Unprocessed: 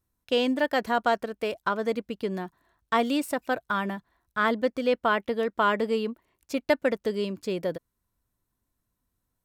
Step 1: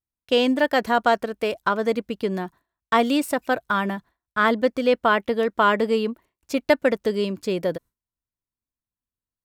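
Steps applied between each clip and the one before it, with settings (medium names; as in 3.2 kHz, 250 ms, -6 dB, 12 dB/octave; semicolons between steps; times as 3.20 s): gate with hold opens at -52 dBFS; trim +5 dB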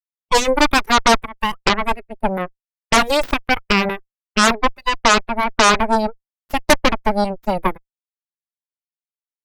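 spectral noise reduction 29 dB; Chebyshev shaper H 7 -17 dB, 8 -7 dB, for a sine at -5.5 dBFS; trim +2 dB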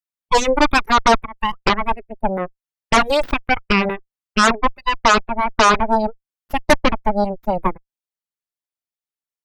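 resonances exaggerated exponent 1.5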